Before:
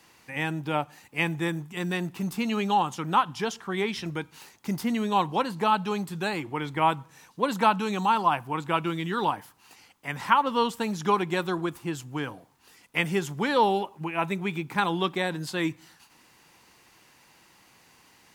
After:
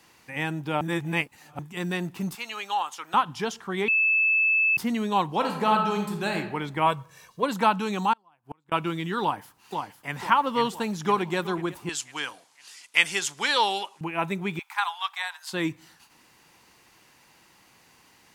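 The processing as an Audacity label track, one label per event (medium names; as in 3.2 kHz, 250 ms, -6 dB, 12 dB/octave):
0.810000	1.590000	reverse
2.350000	3.140000	high-pass 880 Hz
3.880000	4.770000	bleep 2.62 kHz -18.5 dBFS
5.360000	6.360000	reverb throw, RT60 0.86 s, DRR 3 dB
6.860000	7.430000	comb 1.8 ms
8.130000	8.720000	inverted gate shuts at -21 dBFS, range -37 dB
9.220000	10.180000	echo throw 500 ms, feedback 50%, level -5 dB
10.710000	11.370000	echo throw 370 ms, feedback 15%, level -17.5 dB
11.890000	14.010000	frequency weighting ITU-R 468
14.590000	15.530000	steep high-pass 800 Hz 48 dB/octave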